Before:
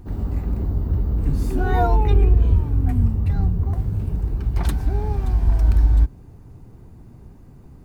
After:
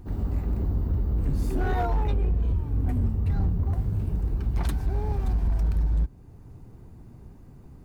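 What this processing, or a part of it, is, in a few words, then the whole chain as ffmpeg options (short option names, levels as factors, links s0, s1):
limiter into clipper: -af "alimiter=limit=0.266:level=0:latency=1:release=430,asoftclip=type=hard:threshold=0.15,volume=0.708"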